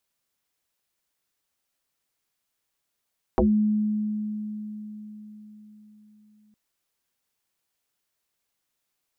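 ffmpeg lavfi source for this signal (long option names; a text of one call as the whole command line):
ffmpeg -f lavfi -i "aevalsrc='0.168*pow(10,-3*t/4.54)*sin(2*PI*212*t+6.2*pow(10,-3*t/0.18)*sin(2*PI*0.69*212*t))':duration=3.16:sample_rate=44100" out.wav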